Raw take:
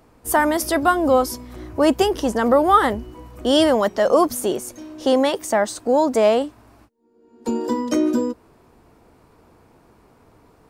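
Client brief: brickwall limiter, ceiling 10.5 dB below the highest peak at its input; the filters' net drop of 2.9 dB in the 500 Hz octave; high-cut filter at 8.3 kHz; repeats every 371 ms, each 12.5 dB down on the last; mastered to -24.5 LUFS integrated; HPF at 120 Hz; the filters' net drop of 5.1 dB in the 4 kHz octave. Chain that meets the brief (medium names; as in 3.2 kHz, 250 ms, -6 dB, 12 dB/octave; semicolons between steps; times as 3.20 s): high-pass 120 Hz; low-pass 8.3 kHz; peaking EQ 500 Hz -3.5 dB; peaking EQ 4 kHz -7 dB; peak limiter -15 dBFS; feedback delay 371 ms, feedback 24%, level -12.5 dB; trim +1 dB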